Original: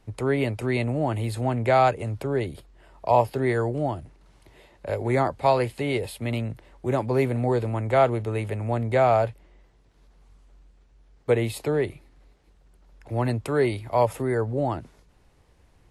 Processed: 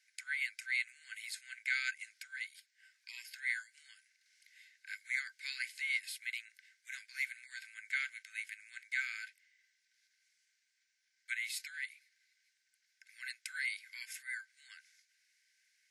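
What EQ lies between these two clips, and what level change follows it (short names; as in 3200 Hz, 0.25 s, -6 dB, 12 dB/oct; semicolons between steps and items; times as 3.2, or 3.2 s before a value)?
rippled Chebyshev high-pass 1500 Hz, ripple 9 dB; +1.5 dB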